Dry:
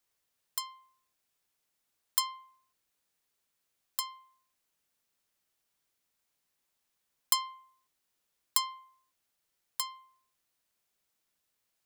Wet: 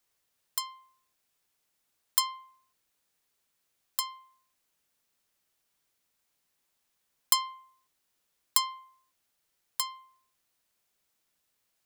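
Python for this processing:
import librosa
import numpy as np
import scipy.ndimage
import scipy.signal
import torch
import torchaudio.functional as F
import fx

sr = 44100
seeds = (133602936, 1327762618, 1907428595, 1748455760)

y = x * librosa.db_to_amplitude(3.0)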